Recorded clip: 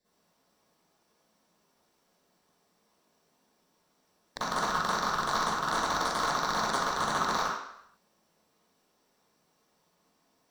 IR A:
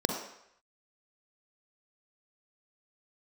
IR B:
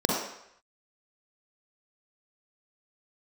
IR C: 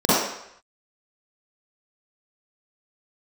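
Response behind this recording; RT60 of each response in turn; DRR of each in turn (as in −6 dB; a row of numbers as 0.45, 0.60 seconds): C; 0.75, 0.75, 0.75 seconds; 3.0, −2.5, −12.0 decibels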